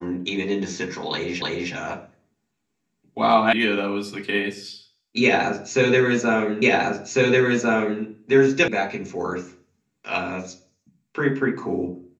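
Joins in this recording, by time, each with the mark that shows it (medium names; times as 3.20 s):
1.42 s: repeat of the last 0.31 s
3.53 s: sound stops dead
6.62 s: repeat of the last 1.4 s
8.68 s: sound stops dead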